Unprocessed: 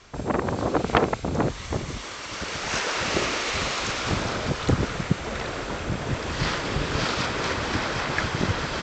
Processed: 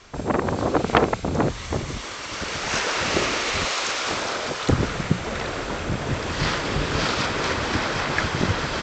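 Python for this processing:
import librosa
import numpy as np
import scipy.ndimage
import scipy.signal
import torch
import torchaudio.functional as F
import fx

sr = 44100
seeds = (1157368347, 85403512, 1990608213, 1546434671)

y = fx.hum_notches(x, sr, base_hz=60, count=3)
y = fx.bass_treble(y, sr, bass_db=-15, treble_db=2, at=(3.65, 4.69))
y = F.gain(torch.from_numpy(y), 2.5).numpy()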